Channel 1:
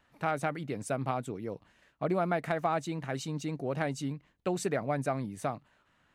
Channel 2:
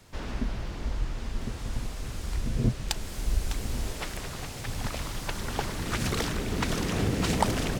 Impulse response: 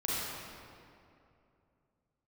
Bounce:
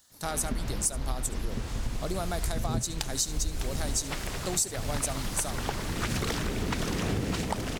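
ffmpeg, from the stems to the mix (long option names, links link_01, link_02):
-filter_complex "[0:a]aexciter=amount=11.6:drive=7.9:freq=3900,volume=-3dB,asplit=2[link_01][link_02];[link_02]volume=-19dB[link_03];[1:a]dynaudnorm=framelen=150:gausssize=3:maxgain=9.5dB,adelay=100,volume=-7.5dB[link_04];[link_03]aecho=0:1:71:1[link_05];[link_01][link_04][link_05]amix=inputs=3:normalize=0,acompressor=threshold=-26dB:ratio=4"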